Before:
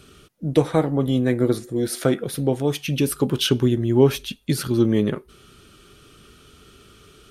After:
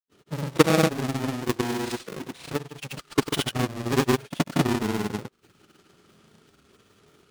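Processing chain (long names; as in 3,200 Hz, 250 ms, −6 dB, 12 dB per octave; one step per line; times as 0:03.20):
each half-wave held at its own peak
high-pass filter 120 Hz
high-shelf EQ 11,000 Hz +6.5 dB
transient designer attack +9 dB, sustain −9 dB
granular cloud, grains 20 per second
sample-rate reduction 13,000 Hz
granular cloud
level −10 dB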